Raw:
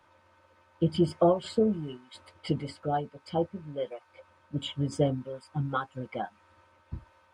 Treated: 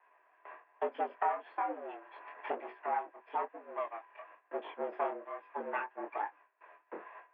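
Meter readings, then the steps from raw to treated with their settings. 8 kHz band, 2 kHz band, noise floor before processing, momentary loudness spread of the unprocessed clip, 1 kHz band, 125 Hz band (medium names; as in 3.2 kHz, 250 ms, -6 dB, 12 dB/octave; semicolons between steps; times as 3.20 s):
under -25 dB, +2.0 dB, -64 dBFS, 19 LU, +0.5 dB, under -40 dB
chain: comb filter that takes the minimum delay 1.2 ms; gate with hold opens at -52 dBFS; chorus 1.1 Hz, delay 17.5 ms, depth 7.9 ms; mistuned SSB +93 Hz 300–2300 Hz; three bands compressed up and down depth 70%; trim +1 dB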